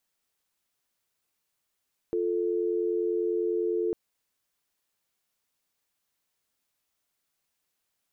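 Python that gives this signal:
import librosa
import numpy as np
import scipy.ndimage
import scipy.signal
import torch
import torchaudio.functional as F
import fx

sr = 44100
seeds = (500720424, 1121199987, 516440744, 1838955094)

y = fx.call_progress(sr, length_s=1.8, kind='dial tone', level_db=-27.5)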